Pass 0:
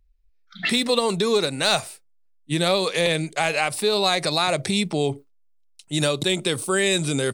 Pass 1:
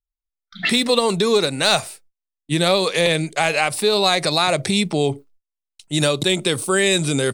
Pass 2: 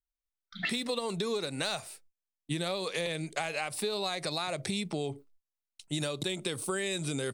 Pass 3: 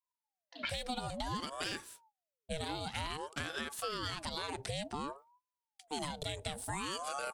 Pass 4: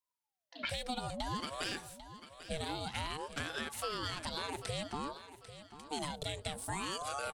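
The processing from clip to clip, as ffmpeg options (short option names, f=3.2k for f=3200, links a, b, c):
-af "agate=range=-30dB:threshold=-52dB:ratio=16:detection=peak,volume=3.5dB"
-af "acompressor=threshold=-24dB:ratio=6,volume=-6dB"
-af "aeval=exprs='val(0)*sin(2*PI*630*n/s+630*0.6/0.55*sin(2*PI*0.55*n/s))':c=same,volume=-3dB"
-af "aecho=1:1:794|1588|2382:0.211|0.074|0.0259"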